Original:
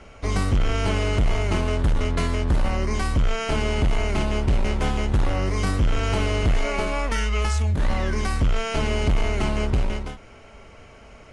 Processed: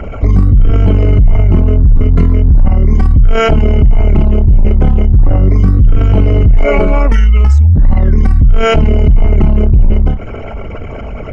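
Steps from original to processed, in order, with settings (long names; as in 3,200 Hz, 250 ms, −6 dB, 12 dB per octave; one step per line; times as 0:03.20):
spectral envelope exaggerated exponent 2
boost into a limiter +25 dB
level −1 dB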